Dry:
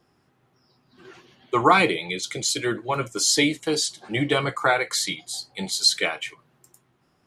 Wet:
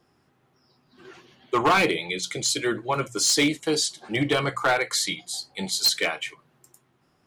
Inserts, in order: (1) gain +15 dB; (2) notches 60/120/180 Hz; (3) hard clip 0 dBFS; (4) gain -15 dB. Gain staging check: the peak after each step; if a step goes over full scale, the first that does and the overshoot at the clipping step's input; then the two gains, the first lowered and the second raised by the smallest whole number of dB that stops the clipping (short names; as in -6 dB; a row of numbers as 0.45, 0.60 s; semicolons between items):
+9.5, +9.5, 0.0, -15.0 dBFS; step 1, 9.5 dB; step 1 +5 dB, step 4 -5 dB